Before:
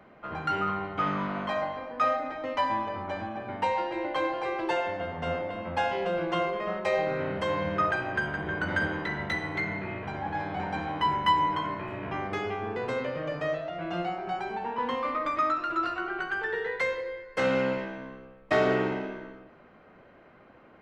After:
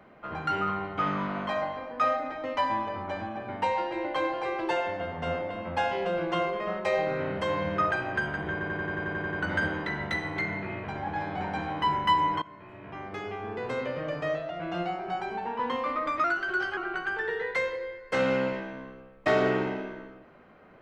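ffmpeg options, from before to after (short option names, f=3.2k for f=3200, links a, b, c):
-filter_complex "[0:a]asplit=13[a][b][c][d][e][f][g][h][i][j][k][l][m];[a]atrim=end=8.612[n];[b]atrim=start=8.518:end=8.612[o];[c]atrim=start=8.518:end=8.612[p];[d]atrim=start=8.518:end=8.612[q];[e]atrim=start=8.518:end=8.612[r];[f]atrim=start=8.518:end=8.612[s];[g]atrim=start=8.518:end=8.612[t];[h]atrim=start=8.518:end=8.612[u];[i]atrim=start=8.518:end=8.612[v];[j]atrim=start=8.518:end=11.61,asetpts=PTS-STARTPTS,afade=t=out:st=3.088:d=0.004:c=hsin:silence=0.11885[w];[k]atrim=start=11.61:end=15.434,asetpts=PTS-STARTPTS,afade=t=in:d=1.52:silence=0.11885[x];[l]atrim=start=15.43:end=16.02,asetpts=PTS-STARTPTS,asetrate=48951,aresample=44100[y];[m]atrim=start=16.016[z];[n][o]acrossfade=d=0.004:c1=hsin:c2=hsin[aa];[aa][p]acrossfade=d=0.004:c1=hsin:c2=hsin[ab];[ab][q]acrossfade=d=0.004:c1=hsin:c2=hsin[ac];[ac][r]acrossfade=d=0.004:c1=hsin:c2=hsin[ad];[ad][s]acrossfade=d=0.004:c1=hsin:c2=hsin[ae];[ae][t]acrossfade=d=0.004:c1=hsin:c2=hsin[af];[af][u]acrossfade=d=0.004:c1=hsin:c2=hsin[ag];[ag][v]acrossfade=d=0.004:c1=hsin:c2=hsin[ah];[w][x]concat=n=2:v=0:a=1[ai];[ah][ai]acrossfade=d=0.004:c1=hsin:c2=hsin[aj];[aj][y]acrossfade=d=0.004:c1=hsin:c2=hsin[ak];[ak][z]acrossfade=d=0.004:c1=hsin:c2=hsin"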